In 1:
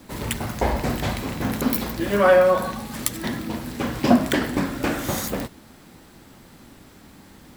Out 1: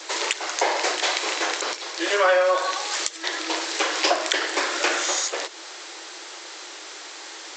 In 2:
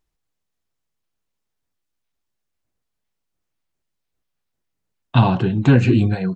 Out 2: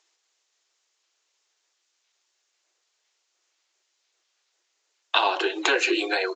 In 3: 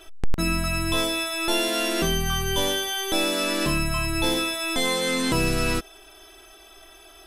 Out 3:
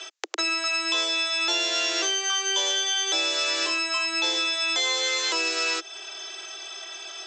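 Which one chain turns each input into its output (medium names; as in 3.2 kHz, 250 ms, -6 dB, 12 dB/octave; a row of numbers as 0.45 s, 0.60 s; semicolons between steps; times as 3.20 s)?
steep high-pass 320 Hz 96 dB/octave; tilt EQ +3.5 dB/octave; compression 3:1, threshold -31 dBFS; resampled via 16 kHz; normalise loudness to -23 LUFS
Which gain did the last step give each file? +11.0 dB, +9.5 dB, +7.0 dB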